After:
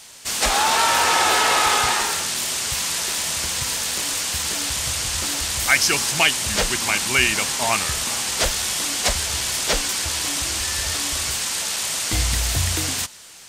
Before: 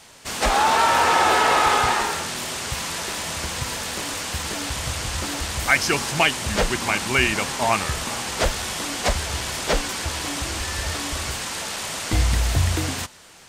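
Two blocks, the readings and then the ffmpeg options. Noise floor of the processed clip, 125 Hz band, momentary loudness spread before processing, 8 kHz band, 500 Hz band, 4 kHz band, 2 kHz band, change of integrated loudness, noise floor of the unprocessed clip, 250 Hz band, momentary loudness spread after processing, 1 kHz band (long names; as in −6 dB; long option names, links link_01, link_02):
−36 dBFS, −3.5 dB, 10 LU, +7.5 dB, −3.0 dB, +5.0 dB, +1.0 dB, +2.5 dB, −39 dBFS, −3.5 dB, 6 LU, −2.0 dB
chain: -af "highshelf=frequency=2500:gain=12,volume=-3.5dB"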